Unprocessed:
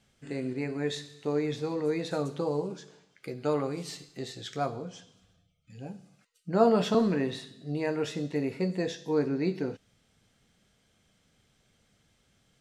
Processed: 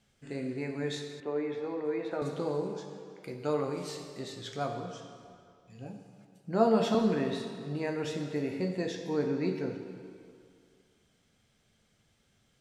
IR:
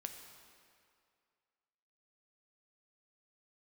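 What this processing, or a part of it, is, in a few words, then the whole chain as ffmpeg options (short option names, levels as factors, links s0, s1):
stairwell: -filter_complex "[1:a]atrim=start_sample=2205[s0];[0:a][s0]afir=irnorm=-1:irlink=0,asettb=1/sr,asplit=3[s1][s2][s3];[s1]atrim=end=1.204[s4];[s2]atrim=start=1.2:end=2.22,asetpts=PTS-STARTPTS,afade=t=in:d=0.004:c=qsin,afade=t=out:st=1.016:d=0.004:c=qsin,acrossover=split=240 2700:gain=0.2 1 0.126[s5][s6][s7];[s5][s6][s7]amix=inputs=3:normalize=0[s8];[s3]atrim=start=2.216[s9];[s4][s8]acrossfade=d=0.004:c1=hsin:c2=qsin[s10];[s10][s9]acrossfade=d=0.004:c1=qsin:c2=hsin,volume=1.12"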